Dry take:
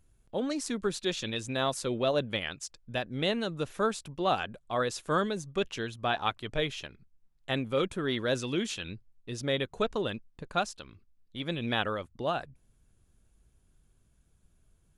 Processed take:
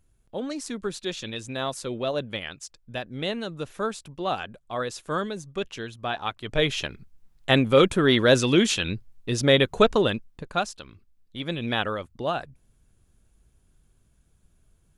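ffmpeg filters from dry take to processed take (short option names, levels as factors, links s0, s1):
-af "volume=3.76,afade=t=in:st=6.37:d=0.48:silence=0.266073,afade=t=out:st=9.84:d=0.67:silence=0.398107"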